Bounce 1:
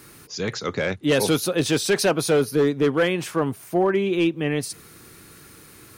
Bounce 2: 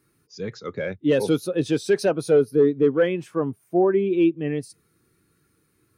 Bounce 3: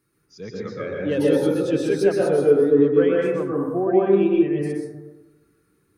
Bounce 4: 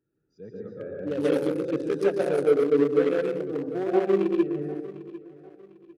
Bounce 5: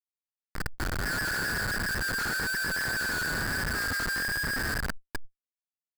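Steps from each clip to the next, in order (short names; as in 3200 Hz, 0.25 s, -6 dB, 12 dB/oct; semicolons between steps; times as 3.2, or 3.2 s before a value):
spectral expander 1.5:1
plate-style reverb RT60 1.2 s, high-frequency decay 0.25×, pre-delay 0.11 s, DRR -4 dB; gain -5 dB
Wiener smoothing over 41 samples; low shelf 330 Hz -10 dB; feedback echo 0.75 s, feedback 33%, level -18 dB
band inversion scrambler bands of 2000 Hz; Schmitt trigger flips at -30.5 dBFS; sustainer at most 21 dB/s; gain -4 dB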